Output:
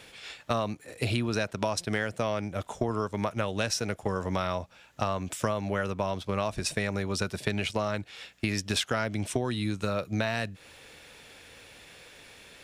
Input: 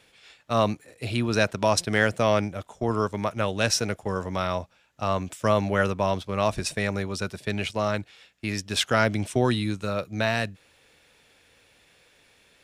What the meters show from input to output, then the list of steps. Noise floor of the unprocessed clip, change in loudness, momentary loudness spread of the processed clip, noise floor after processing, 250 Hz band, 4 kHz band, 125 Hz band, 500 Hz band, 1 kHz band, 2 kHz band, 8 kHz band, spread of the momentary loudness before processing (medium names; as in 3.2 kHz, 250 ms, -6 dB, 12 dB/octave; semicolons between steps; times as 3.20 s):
-61 dBFS, -4.5 dB, 20 LU, -55 dBFS, -4.0 dB, -4.0 dB, -3.5 dB, -5.5 dB, -5.5 dB, -5.5 dB, -3.5 dB, 9 LU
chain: compression 10:1, threshold -34 dBFS, peak gain reduction 18.5 dB; trim +8.5 dB